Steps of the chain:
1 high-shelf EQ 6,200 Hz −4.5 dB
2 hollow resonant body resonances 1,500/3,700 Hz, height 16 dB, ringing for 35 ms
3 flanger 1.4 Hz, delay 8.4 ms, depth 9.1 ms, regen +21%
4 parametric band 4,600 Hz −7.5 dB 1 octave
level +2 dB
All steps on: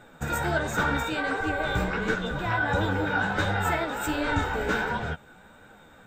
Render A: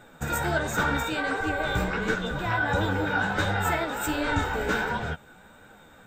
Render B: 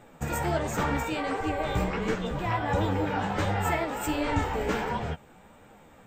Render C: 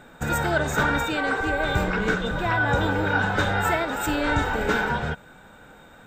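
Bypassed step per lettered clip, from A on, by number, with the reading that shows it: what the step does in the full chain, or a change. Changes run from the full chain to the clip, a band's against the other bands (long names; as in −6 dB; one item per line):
1, 8 kHz band +2.5 dB
2, 2 kHz band −7.5 dB
3, change in integrated loudness +3.5 LU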